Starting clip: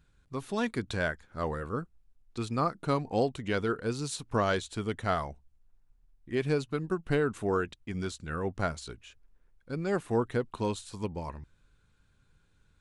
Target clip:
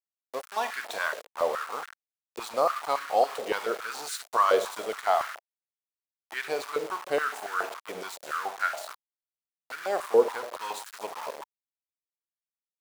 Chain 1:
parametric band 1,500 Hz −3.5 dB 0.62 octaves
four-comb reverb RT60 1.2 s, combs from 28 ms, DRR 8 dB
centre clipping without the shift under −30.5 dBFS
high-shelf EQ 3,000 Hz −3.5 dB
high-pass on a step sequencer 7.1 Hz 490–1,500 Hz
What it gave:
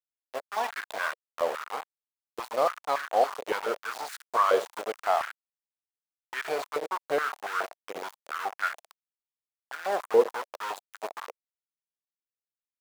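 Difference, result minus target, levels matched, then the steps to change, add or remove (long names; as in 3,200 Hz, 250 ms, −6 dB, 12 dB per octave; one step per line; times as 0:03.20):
centre clipping without the shift: distortion +7 dB; 8,000 Hz band −4.0 dB
change: centre clipping without the shift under −37 dBFS
change: high-shelf EQ 3,000 Hz +2.5 dB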